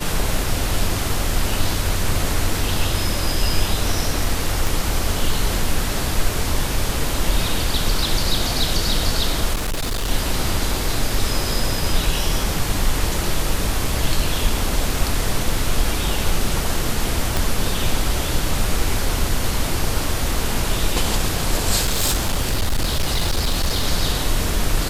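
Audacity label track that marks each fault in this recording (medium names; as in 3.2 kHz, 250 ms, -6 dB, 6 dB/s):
4.670000	4.670000	pop
9.530000	10.110000	clipped -19 dBFS
17.370000	17.370000	pop
21.810000	23.870000	clipped -14.5 dBFS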